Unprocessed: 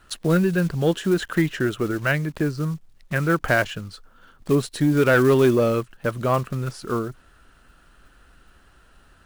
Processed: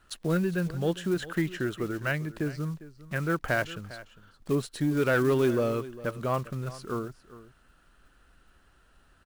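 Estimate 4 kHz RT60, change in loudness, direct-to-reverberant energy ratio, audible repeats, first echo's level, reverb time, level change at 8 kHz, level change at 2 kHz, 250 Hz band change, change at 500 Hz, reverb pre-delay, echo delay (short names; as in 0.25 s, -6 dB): none, -7.5 dB, none, 1, -17.0 dB, none, -7.5 dB, -7.5 dB, -7.5 dB, -7.5 dB, none, 0.403 s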